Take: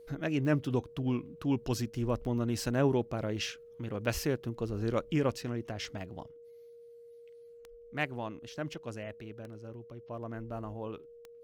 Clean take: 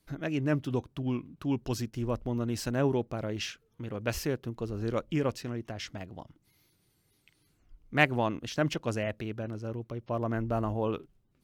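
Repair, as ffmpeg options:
ffmpeg -i in.wav -af "adeclick=threshold=4,bandreject=frequency=470:width=30,asetnsamples=nb_out_samples=441:pad=0,asendcmd='6.28 volume volume 9.5dB',volume=0dB" out.wav

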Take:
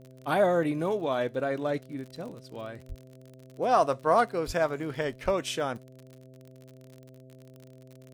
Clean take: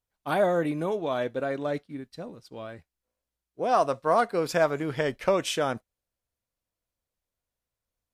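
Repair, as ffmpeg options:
ffmpeg -i in.wav -filter_complex "[0:a]adeclick=threshold=4,bandreject=frequency=129.6:width_type=h:width=4,bandreject=frequency=259.2:width_type=h:width=4,bandreject=frequency=388.8:width_type=h:width=4,bandreject=frequency=518.4:width_type=h:width=4,bandreject=frequency=648:width_type=h:width=4,asplit=3[link_01][link_02][link_03];[link_01]afade=type=out:start_time=2.88:duration=0.02[link_04];[link_02]highpass=frequency=140:width=0.5412,highpass=frequency=140:width=1.3066,afade=type=in:start_time=2.88:duration=0.02,afade=type=out:start_time=3:duration=0.02[link_05];[link_03]afade=type=in:start_time=3:duration=0.02[link_06];[link_04][link_05][link_06]amix=inputs=3:normalize=0,asplit=3[link_07][link_08][link_09];[link_07]afade=type=out:start_time=4.46:duration=0.02[link_10];[link_08]highpass=frequency=140:width=0.5412,highpass=frequency=140:width=1.3066,afade=type=in:start_time=4.46:duration=0.02,afade=type=out:start_time=4.58:duration=0.02[link_11];[link_09]afade=type=in:start_time=4.58:duration=0.02[link_12];[link_10][link_11][link_12]amix=inputs=3:normalize=0,asplit=3[link_13][link_14][link_15];[link_13]afade=type=out:start_time=5.24:duration=0.02[link_16];[link_14]highpass=frequency=140:width=0.5412,highpass=frequency=140:width=1.3066,afade=type=in:start_time=5.24:duration=0.02,afade=type=out:start_time=5.36:duration=0.02[link_17];[link_15]afade=type=in:start_time=5.36:duration=0.02[link_18];[link_16][link_17][link_18]amix=inputs=3:normalize=0,asetnsamples=nb_out_samples=441:pad=0,asendcmd='4.26 volume volume 3.5dB',volume=0dB" out.wav

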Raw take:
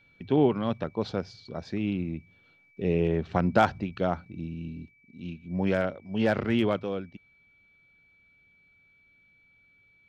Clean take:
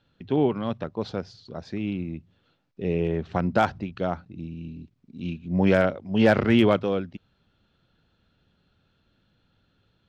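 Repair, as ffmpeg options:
ffmpeg -i in.wav -af "bandreject=frequency=2300:width=30,asetnsamples=nb_out_samples=441:pad=0,asendcmd='4.91 volume volume 6.5dB',volume=0dB" out.wav

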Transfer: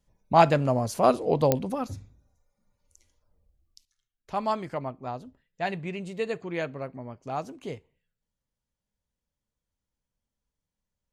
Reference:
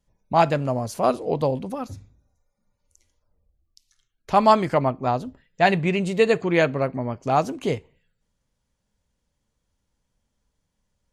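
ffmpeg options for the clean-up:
ffmpeg -i in.wav -af "adeclick=threshold=4,asetnsamples=nb_out_samples=441:pad=0,asendcmd='3.85 volume volume 12dB',volume=0dB" out.wav

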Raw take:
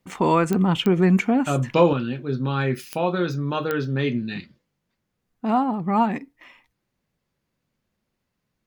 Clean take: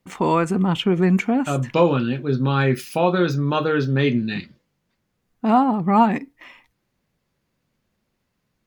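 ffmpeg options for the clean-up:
ffmpeg -i in.wav -af "adeclick=threshold=4,asetnsamples=nb_out_samples=441:pad=0,asendcmd='1.93 volume volume 4.5dB',volume=0dB" out.wav

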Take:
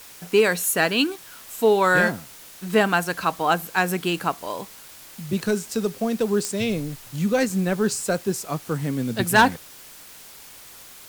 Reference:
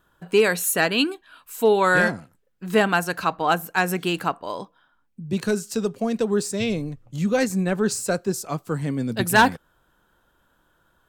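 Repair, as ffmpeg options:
ffmpeg -i in.wav -af "adeclick=threshold=4,afftdn=noise_reduction=20:noise_floor=-44" out.wav

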